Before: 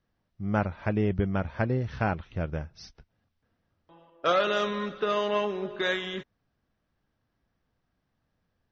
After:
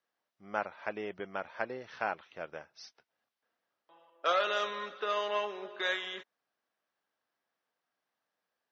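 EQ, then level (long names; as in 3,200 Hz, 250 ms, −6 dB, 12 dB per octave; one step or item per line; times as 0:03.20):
high-pass filter 570 Hz 12 dB per octave
−3.0 dB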